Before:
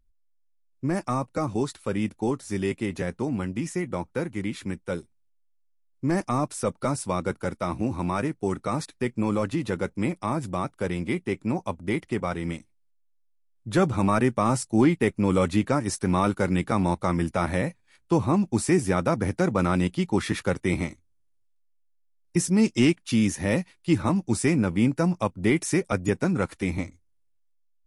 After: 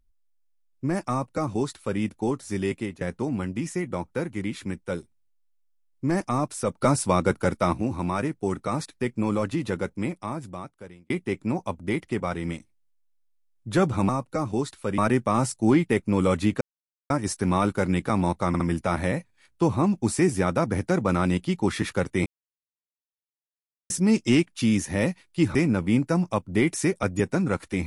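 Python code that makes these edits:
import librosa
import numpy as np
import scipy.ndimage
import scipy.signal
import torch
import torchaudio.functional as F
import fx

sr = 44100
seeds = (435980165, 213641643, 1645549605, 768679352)

y = fx.edit(x, sr, fx.duplicate(start_s=1.11, length_s=0.89, to_s=14.09),
    fx.fade_out_to(start_s=2.72, length_s=0.29, curve='qsin', floor_db=-21.5),
    fx.clip_gain(start_s=6.81, length_s=0.92, db=5.5),
    fx.fade_out_span(start_s=9.74, length_s=1.36),
    fx.insert_silence(at_s=15.72, length_s=0.49),
    fx.stutter(start_s=17.1, slice_s=0.06, count=3),
    fx.silence(start_s=20.76, length_s=1.64),
    fx.cut(start_s=24.05, length_s=0.39), tone=tone)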